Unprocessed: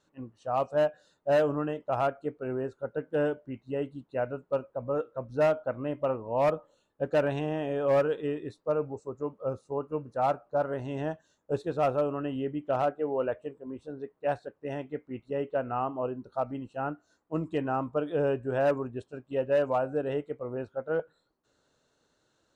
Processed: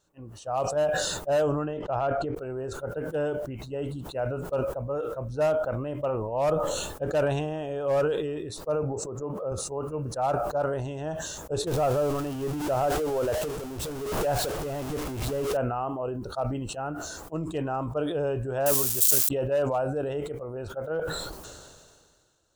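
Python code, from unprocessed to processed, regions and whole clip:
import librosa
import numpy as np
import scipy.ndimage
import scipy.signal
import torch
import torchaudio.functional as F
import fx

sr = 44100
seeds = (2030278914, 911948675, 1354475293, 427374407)

y = fx.chain(x, sr, fx.air_absorb(metres=160.0),
    fx.sustainer(db_per_s=25.0), at=(1.64, 2.35))
y = fx.chain(y, sr, fx.highpass(hz=140.0, slope=12),
    fx.high_shelf(hz=2100.0, db=-10.0),
    fx.pre_swell(db_per_s=62.0), at=(8.83, 9.52))
y = fx.chain(y, sr, fx.zero_step(step_db=-32.5),
    fx.high_shelf(hz=2600.0, db=-7.0),
    fx.pre_swell(db_per_s=32.0), at=(11.67, 15.57))
y = fx.chain(y, sr, fx.crossing_spikes(level_db=-26.0),
    fx.high_shelf(hz=3600.0, db=9.0), at=(18.66, 19.29))
y = fx.graphic_eq_10(y, sr, hz=(125, 250, 500, 1000, 2000, 4000), db=(-5, -12, -5, -6, -11, -5))
y = fx.sustainer(y, sr, db_per_s=31.0)
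y = F.gain(torch.from_numpy(y), 8.0).numpy()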